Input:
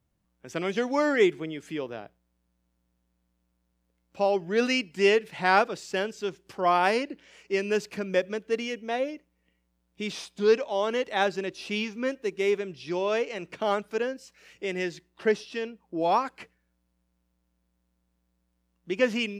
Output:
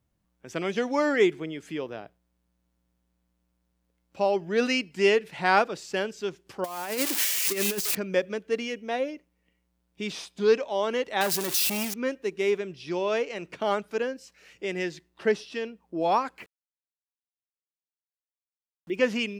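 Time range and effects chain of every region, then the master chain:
0:06.64–0:07.95: spike at every zero crossing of −16.5 dBFS + compressor whose output falls as the input rises −27 dBFS, ratio −0.5
0:11.21–0:11.94: spike at every zero crossing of −17 dBFS + low-shelf EQ 200 Hz +7.5 dB + saturating transformer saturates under 2,100 Hz
0:16.38–0:18.96: spectral envelope exaggerated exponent 1.5 + centre clipping without the shift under −52 dBFS
whole clip: no processing

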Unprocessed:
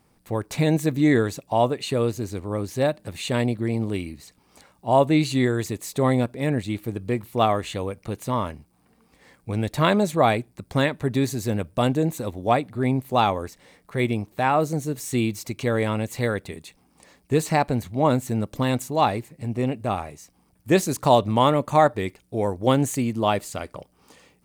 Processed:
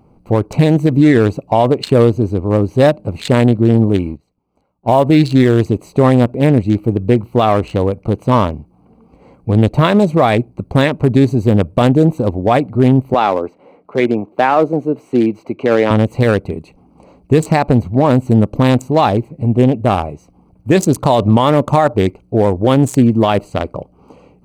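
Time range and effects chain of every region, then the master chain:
0:03.92–0:05.60: mu-law and A-law mismatch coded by A + noise gate −46 dBFS, range −13 dB
0:13.14–0:15.91: high-pass filter 58 Hz + three-way crossover with the lows and the highs turned down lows −18 dB, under 230 Hz, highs −13 dB, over 3,300 Hz
whole clip: adaptive Wiener filter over 25 samples; boost into a limiter +15.5 dB; level −1 dB

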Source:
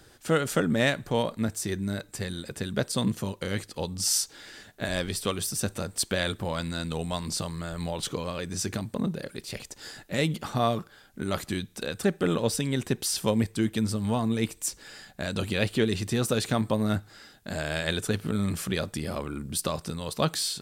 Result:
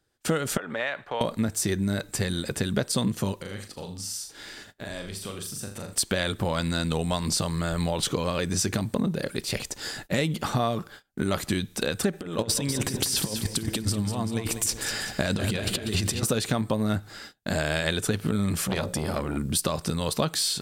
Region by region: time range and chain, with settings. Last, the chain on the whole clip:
0:00.57–0:01.21: three-way crossover with the lows and the highs turned down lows −21 dB, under 540 Hz, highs −23 dB, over 3,300 Hz + downward compressor 2.5 to 1, threshold −35 dBFS
0:03.36–0:05.93: downward compressor 3 to 1, threshold −47 dBFS + flutter between parallel walls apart 6.9 metres, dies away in 0.41 s
0:12.13–0:16.23: compressor whose output falls as the input rises −32 dBFS, ratio −0.5 + repeating echo 193 ms, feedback 46%, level −10 dB
0:18.61–0:19.37: mains-hum notches 60/120/180/240/300/360/420/480/540/600 Hz + saturating transformer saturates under 1,100 Hz
whole clip: noise gate −49 dBFS, range −28 dB; downward compressor, threshold −30 dBFS; level +8 dB

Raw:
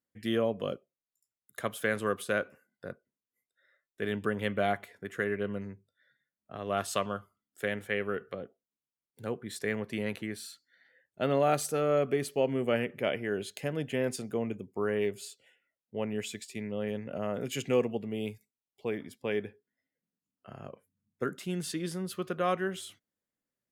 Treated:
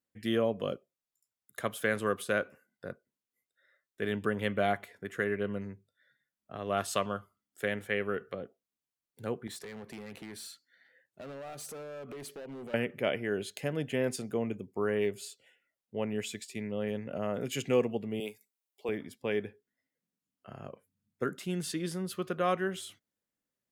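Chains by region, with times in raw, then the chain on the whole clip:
0:09.47–0:12.74: high-pass filter 98 Hz + downward compressor 5 to 1, threshold −37 dBFS + hard clipping −40 dBFS
0:18.20–0:18.89: high-pass filter 320 Hz + high-shelf EQ 7,800 Hz +7 dB
whole clip: no processing

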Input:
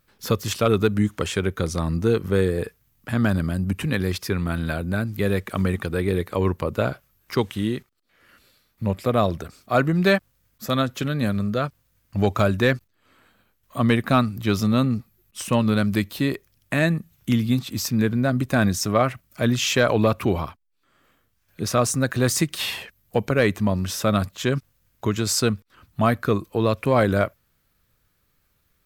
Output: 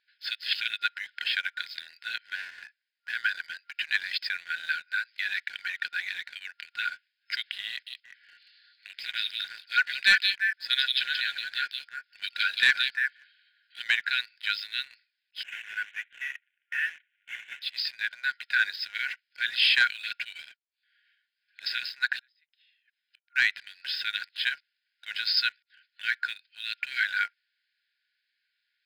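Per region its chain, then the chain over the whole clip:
0:02.35–0:03.10: parametric band 3,300 Hz −7 dB 1.7 octaves + gain into a clipping stage and back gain 25 dB
0:07.69–0:13.84: high-shelf EQ 4,400 Hz +8 dB + echo through a band-pass that steps 175 ms, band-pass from 3,700 Hz, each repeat −1.4 octaves, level −2 dB
0:15.43–0:17.62: variable-slope delta modulation 16 kbit/s + high-frequency loss of the air 150 metres
0:22.19–0:23.36: gate with flip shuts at −24 dBFS, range −36 dB + notch filter 4,500 Hz, Q 10
whole clip: brick-wall band-pass 1,400–5,200 Hz; leveller curve on the samples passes 1

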